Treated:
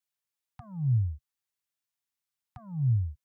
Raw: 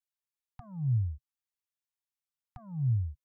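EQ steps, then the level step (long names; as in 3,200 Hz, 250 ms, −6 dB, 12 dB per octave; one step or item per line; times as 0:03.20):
high-pass filter 73 Hz 12 dB per octave
parametric band 410 Hz −4.5 dB 1.9 octaves
+4.0 dB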